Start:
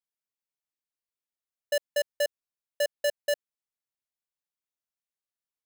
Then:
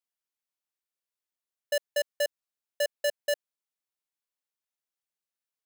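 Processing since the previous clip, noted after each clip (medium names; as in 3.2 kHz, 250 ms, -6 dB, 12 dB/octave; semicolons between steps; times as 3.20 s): bass shelf 190 Hz -11 dB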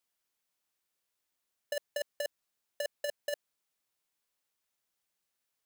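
compressor with a negative ratio -31 dBFS, ratio -0.5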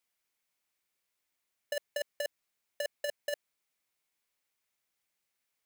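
peaking EQ 2.2 kHz +6 dB 0.39 oct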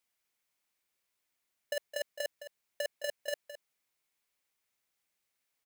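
delay 214 ms -12.5 dB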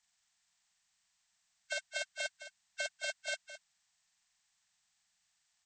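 knee-point frequency compression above 1.2 kHz 1.5:1; elliptic band-stop 210–690 Hz; trim +4.5 dB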